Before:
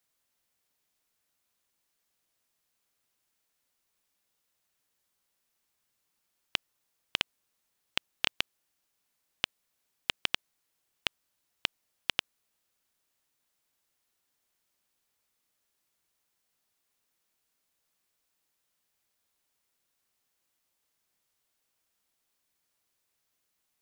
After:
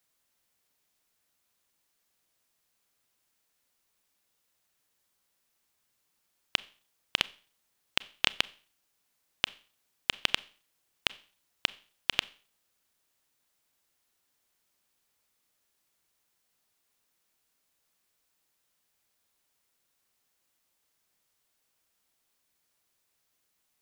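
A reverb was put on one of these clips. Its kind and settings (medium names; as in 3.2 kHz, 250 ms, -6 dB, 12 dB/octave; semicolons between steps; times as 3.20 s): Schroeder reverb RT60 0.42 s, combs from 29 ms, DRR 19 dB; trim +2.5 dB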